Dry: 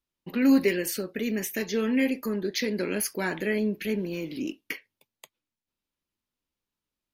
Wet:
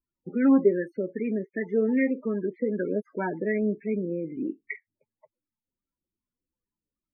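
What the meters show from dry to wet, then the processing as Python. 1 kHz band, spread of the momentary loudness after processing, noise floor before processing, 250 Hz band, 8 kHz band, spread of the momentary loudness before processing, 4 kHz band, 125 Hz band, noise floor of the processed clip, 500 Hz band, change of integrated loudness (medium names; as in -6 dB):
+1.0 dB, 12 LU, under -85 dBFS, +0.5 dB, under -40 dB, 12 LU, under -40 dB, +0.5 dB, under -85 dBFS, +2.5 dB, +0.5 dB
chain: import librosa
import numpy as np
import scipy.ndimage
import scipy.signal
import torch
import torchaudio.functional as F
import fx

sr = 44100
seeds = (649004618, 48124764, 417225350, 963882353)

y = fx.high_shelf_res(x, sr, hz=2800.0, db=-6.5, q=1.5)
y = fx.spec_topn(y, sr, count=16)
y = fx.filter_lfo_lowpass(y, sr, shape='sine', hz=2.6, low_hz=540.0, high_hz=1600.0, q=1.9)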